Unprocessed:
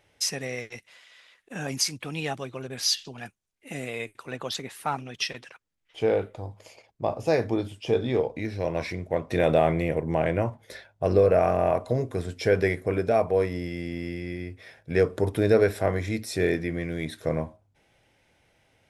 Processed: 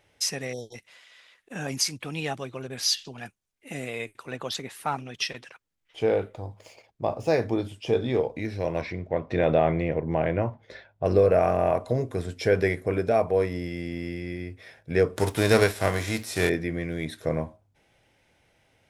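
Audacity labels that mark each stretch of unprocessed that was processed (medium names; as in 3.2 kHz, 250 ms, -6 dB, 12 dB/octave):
0.530000	0.750000	spectral selection erased 990–3100 Hz
6.290000	7.630000	median filter over 3 samples
8.810000	11.060000	distance through air 160 m
15.160000	16.480000	formants flattened exponent 0.6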